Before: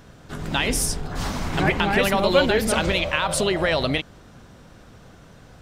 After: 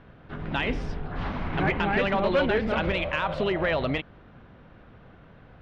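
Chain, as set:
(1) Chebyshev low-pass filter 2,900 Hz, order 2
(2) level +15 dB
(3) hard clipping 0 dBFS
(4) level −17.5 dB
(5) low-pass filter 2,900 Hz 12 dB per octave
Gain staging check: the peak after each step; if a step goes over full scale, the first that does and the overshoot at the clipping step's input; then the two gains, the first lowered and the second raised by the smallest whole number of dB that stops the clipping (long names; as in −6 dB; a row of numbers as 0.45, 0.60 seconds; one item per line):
−6.5, +8.5, 0.0, −17.5, −17.0 dBFS
step 2, 8.5 dB
step 2 +6 dB, step 4 −8.5 dB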